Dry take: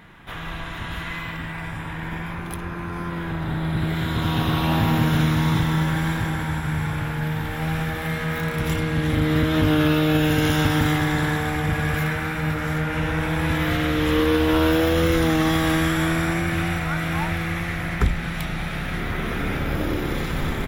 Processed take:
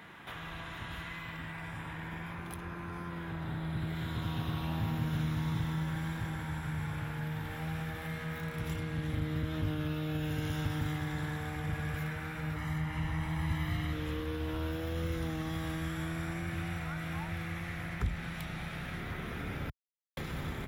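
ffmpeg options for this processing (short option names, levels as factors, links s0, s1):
-filter_complex "[0:a]asettb=1/sr,asplit=3[s0][s1][s2];[s0]atrim=end=12.564[s3];[s1]atrim=start=12.56:end=13.93,asetpts=PTS-STARTPTS,afade=t=in:d=0.004:c=qsin,afade=t=out:st=1.366:d=0.004:c=qsin,aecho=1:1:1:0.65,atrim=end_sample=60417[s4];[s2]atrim=start=13.926[s5];[s3][s4]acrossfade=d=0.004:c1=hsin:c2=qsin[s6];[s6][s5]acrossfade=d=0.004:c1=qsin:c2=hsin,asplit=3[s7][s8][s9];[s7]atrim=end=19.7,asetpts=PTS-STARTPTS,afade=t=out:st=19.696:d=0.004:c=hsin[s10];[s8]atrim=start=19.7:end=20.17,asetpts=PTS-STARTPTS,volume=0[s11];[s9]atrim=start=20.17,asetpts=PTS-STARTPTS,afade=t=in:d=0.004:c=hsin[s12];[s10][s11][s12]concat=n=3:v=0:a=1,highpass=46,lowshelf=f=140:g=-10.5,acrossover=split=140[s13][s14];[s14]acompressor=threshold=0.00794:ratio=3[s15];[s13][s15]amix=inputs=2:normalize=0,volume=0.794"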